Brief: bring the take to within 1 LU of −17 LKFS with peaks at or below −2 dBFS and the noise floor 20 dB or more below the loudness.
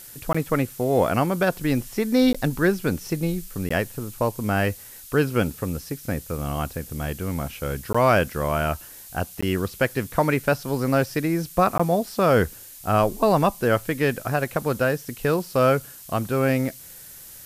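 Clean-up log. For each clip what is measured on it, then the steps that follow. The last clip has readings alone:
number of dropouts 6; longest dropout 15 ms; background noise floor −43 dBFS; target noise floor −44 dBFS; integrated loudness −23.5 LKFS; sample peak −6.5 dBFS; target loudness −17.0 LKFS
→ repair the gap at 0:00.33/0:02.33/0:03.69/0:07.93/0:09.41/0:11.78, 15 ms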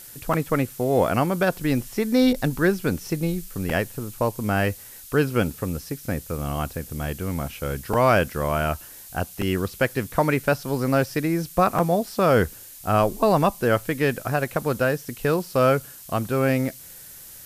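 number of dropouts 0; background noise floor −43 dBFS; target noise floor −44 dBFS
→ broadband denoise 6 dB, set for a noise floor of −43 dBFS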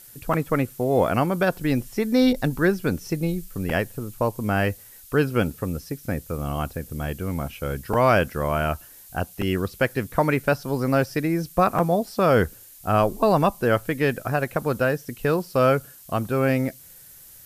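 background noise floor −47 dBFS; integrated loudness −23.5 LKFS; sample peak −6.5 dBFS; target loudness −17.0 LKFS
→ level +6.5 dB
brickwall limiter −2 dBFS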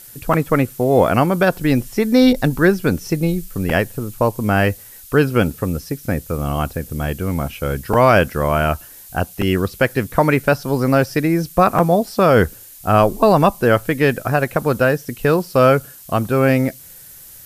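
integrated loudness −17.5 LKFS; sample peak −2.0 dBFS; background noise floor −41 dBFS

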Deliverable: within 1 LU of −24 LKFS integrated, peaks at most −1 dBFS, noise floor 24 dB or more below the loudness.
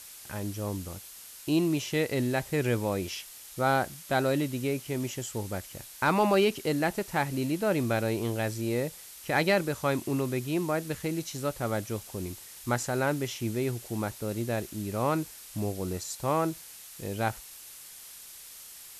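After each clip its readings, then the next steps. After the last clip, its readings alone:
background noise floor −47 dBFS; target noise floor −54 dBFS; integrated loudness −30.0 LKFS; sample peak −14.0 dBFS; target loudness −24.0 LKFS
→ noise reduction from a noise print 7 dB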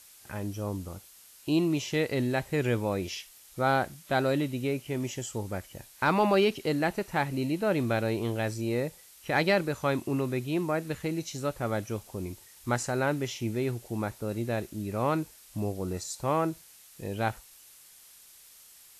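background noise floor −54 dBFS; integrated loudness −30.0 LKFS; sample peak −13.5 dBFS; target loudness −24.0 LKFS
→ level +6 dB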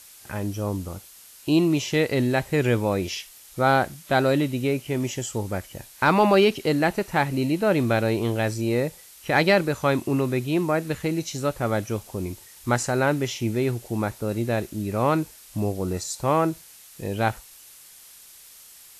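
integrated loudness −24.0 LKFS; sample peak −7.5 dBFS; background noise floor −48 dBFS

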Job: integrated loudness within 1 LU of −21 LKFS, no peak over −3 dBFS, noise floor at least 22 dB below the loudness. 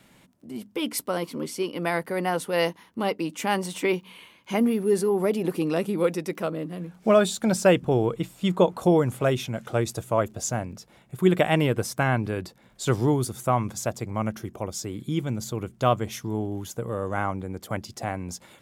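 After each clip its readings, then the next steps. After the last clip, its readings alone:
crackle rate 17 per second; integrated loudness −26.0 LKFS; sample peak −6.5 dBFS; target loudness −21.0 LKFS
→ click removal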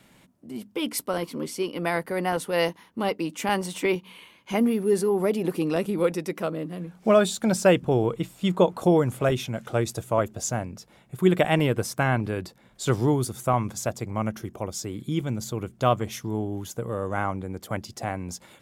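crackle rate 0.054 per second; integrated loudness −26.0 LKFS; sample peak −6.5 dBFS; target loudness −21.0 LKFS
→ level +5 dB
brickwall limiter −3 dBFS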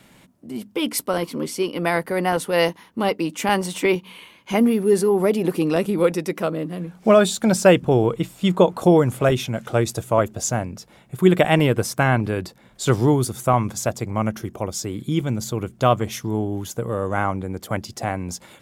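integrated loudness −21.0 LKFS; sample peak −3.0 dBFS; background noise floor −52 dBFS

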